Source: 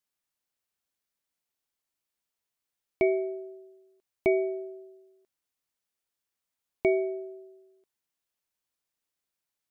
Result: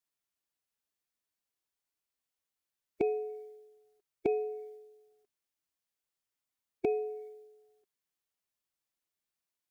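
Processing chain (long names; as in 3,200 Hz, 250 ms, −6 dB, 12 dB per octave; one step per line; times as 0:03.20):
phase-vocoder pitch shift with formants kept +2 semitones
level −3 dB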